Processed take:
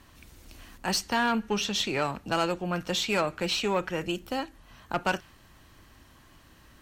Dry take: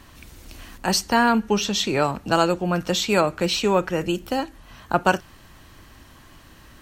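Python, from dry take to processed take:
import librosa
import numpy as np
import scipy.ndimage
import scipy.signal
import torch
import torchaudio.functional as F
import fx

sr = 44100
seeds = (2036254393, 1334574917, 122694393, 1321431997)

y = fx.dynamic_eq(x, sr, hz=2500.0, q=0.73, threshold_db=-35.0, ratio=4.0, max_db=5)
y = fx.tube_stage(y, sr, drive_db=11.0, bias=0.3)
y = y * 10.0 ** (-6.5 / 20.0)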